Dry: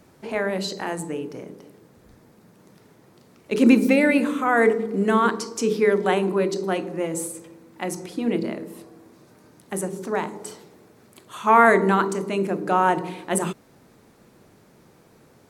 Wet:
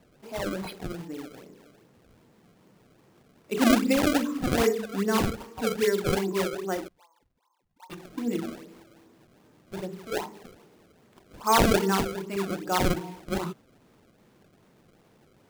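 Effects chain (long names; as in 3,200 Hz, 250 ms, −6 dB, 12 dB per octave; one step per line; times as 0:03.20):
mu-law and A-law mismatch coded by mu
0:06.88–0:07.90: flat-topped band-pass 970 Hz, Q 5.1
sample-and-hold swept by an LFO 28×, swing 160% 2.5 Hz
noise reduction from a noise print of the clip's start 7 dB
level −5.5 dB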